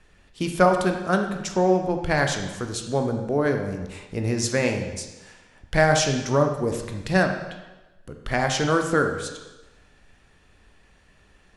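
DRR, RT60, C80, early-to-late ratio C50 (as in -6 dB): 4.0 dB, 1.1 s, 8.5 dB, 6.0 dB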